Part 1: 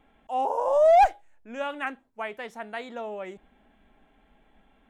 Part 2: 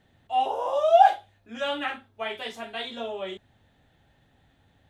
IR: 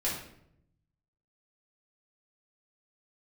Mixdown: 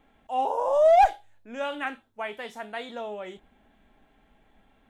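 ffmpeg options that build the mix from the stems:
-filter_complex "[0:a]volume=-0.5dB[a];[1:a]highshelf=f=5k:g=11,flanger=delay=19:depth=3.6:speed=0.66,volume=-11dB[b];[a][b]amix=inputs=2:normalize=0"

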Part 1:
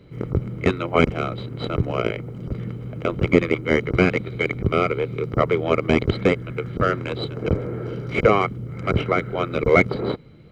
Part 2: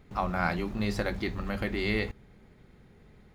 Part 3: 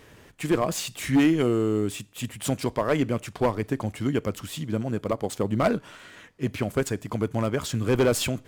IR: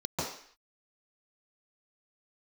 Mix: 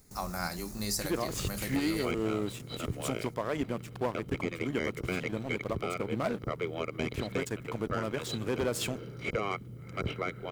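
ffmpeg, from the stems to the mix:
-filter_complex "[0:a]crystalizer=i=3:c=0,adelay=1100,volume=-13.5dB[a];[1:a]aexciter=amount=12.8:drive=6.3:freq=4.8k,volume=-6.5dB[b];[2:a]highpass=f=150:p=1,aeval=exprs='sgn(val(0))*max(abs(val(0))-0.0106,0)':c=same,adelay=600,volume=-4dB[c];[a][b][c]amix=inputs=3:normalize=0,alimiter=limit=-20.5dB:level=0:latency=1:release=138"

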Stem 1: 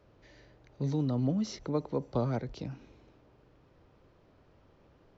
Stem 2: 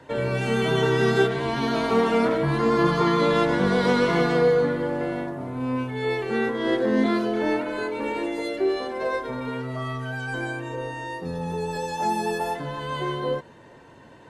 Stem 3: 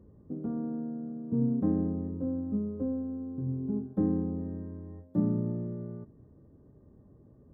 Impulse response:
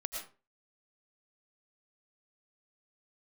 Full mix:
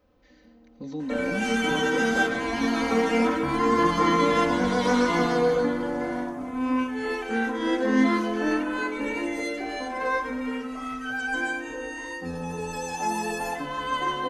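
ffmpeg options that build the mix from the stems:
-filter_complex "[0:a]volume=-8dB,asplit=3[a][b][c];[b]volume=-5dB[d];[1:a]equalizer=f=200:t=o:w=0.33:g=-8,equalizer=f=500:t=o:w=0.33:g=-8,equalizer=f=4k:t=o:w=0.33:g=-6,equalizer=f=6.3k:t=o:w=0.33:g=6,flanger=delay=3.2:depth=3.4:regen=-78:speed=1.7:shape=sinusoidal,adelay=1000,volume=1dB,asplit=2[e][f];[f]volume=-11dB[g];[2:a]aemphasis=mode=production:type=riaa,volume=-1.5dB,afade=t=in:st=0.91:d=0.38:silence=0.354813,afade=t=in:st=2.66:d=0.61:silence=0.334965,afade=t=out:st=4.59:d=0.74:silence=0.266073[h];[c]apad=whole_len=332406[i];[h][i]sidechaincompress=threshold=-43dB:ratio=8:attack=16:release=390[j];[3:a]atrim=start_sample=2205[k];[d][g]amix=inputs=2:normalize=0[l];[l][k]afir=irnorm=-1:irlink=0[m];[a][e][j][m]amix=inputs=4:normalize=0,aecho=1:1:3.9:0.97"

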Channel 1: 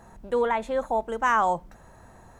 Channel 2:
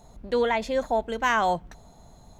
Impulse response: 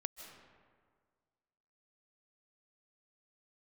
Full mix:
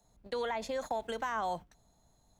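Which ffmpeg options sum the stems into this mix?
-filter_complex "[0:a]aeval=exprs='val(0)+0.0112*(sin(2*PI*60*n/s)+sin(2*PI*2*60*n/s)/2+sin(2*PI*3*60*n/s)/3+sin(2*PI*4*60*n/s)/4+sin(2*PI*5*60*n/s)/5)':c=same,volume=-17.5dB[a];[1:a]alimiter=limit=-22.5dB:level=0:latency=1:release=113,volume=-1,volume=-0.5dB[b];[a][b]amix=inputs=2:normalize=0,agate=range=-18dB:threshold=-37dB:ratio=16:detection=peak,highshelf=f=3.2k:g=8.5,acrossover=split=96|520|1200[c][d][e][f];[c]acompressor=threshold=-60dB:ratio=4[g];[d]acompressor=threshold=-42dB:ratio=4[h];[e]acompressor=threshold=-35dB:ratio=4[i];[f]acompressor=threshold=-44dB:ratio=4[j];[g][h][i][j]amix=inputs=4:normalize=0"

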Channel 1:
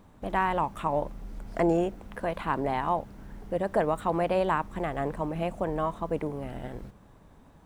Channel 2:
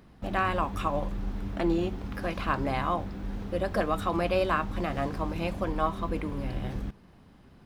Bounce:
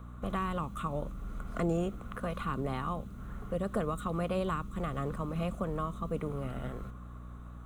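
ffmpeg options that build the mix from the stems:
-filter_complex "[0:a]aeval=exprs='val(0)+0.00631*(sin(2*PI*60*n/s)+sin(2*PI*2*60*n/s)/2+sin(2*PI*3*60*n/s)/3+sin(2*PI*4*60*n/s)/4+sin(2*PI*5*60*n/s)/5)':c=same,volume=-0.5dB,asplit=2[a][b];[1:a]acompressor=threshold=-34dB:ratio=6,volume=-4.5dB[c];[b]apad=whole_len=337634[d];[c][d]sidechaingate=range=-33dB:threshold=-35dB:ratio=16:detection=peak[e];[a][e]amix=inputs=2:normalize=0,superequalizer=6b=0.631:9b=0.708:10b=3.98:14b=0.398,acrossover=split=390|3000[f][g][h];[g]acompressor=threshold=-42dB:ratio=3[i];[f][i][h]amix=inputs=3:normalize=0"

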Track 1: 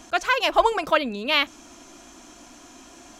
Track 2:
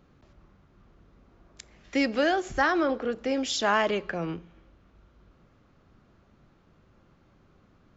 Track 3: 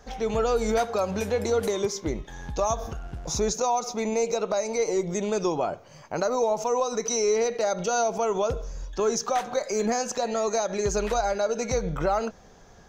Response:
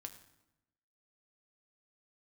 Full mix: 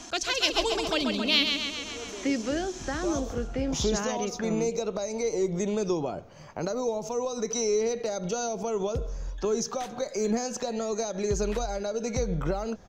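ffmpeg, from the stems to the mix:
-filter_complex "[0:a]equalizer=f=5.7k:w=0.78:g=12,volume=1dB,asplit=3[a][b][c];[b]volume=-5.5dB[d];[1:a]adelay=300,volume=-0.5dB[e];[2:a]highshelf=f=7k:g=5,adelay=450,volume=1dB[f];[c]apad=whole_len=588027[g];[f][g]sidechaincompress=threshold=-33dB:ratio=8:attack=6:release=1150[h];[d]aecho=0:1:135|270|405|540|675|810|945|1080:1|0.55|0.303|0.166|0.0915|0.0503|0.0277|0.0152[i];[a][e][h][i]amix=inputs=4:normalize=0,acrossover=split=430|3000[j][k][l];[k]acompressor=threshold=-36dB:ratio=5[m];[j][m][l]amix=inputs=3:normalize=0,highshelf=f=5.3k:g=-11"

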